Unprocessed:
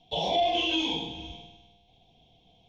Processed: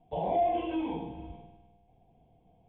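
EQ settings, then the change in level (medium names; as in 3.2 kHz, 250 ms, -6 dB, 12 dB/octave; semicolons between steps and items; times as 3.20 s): low-pass 1.9 kHz 24 dB/octave; distance through air 310 m; 0.0 dB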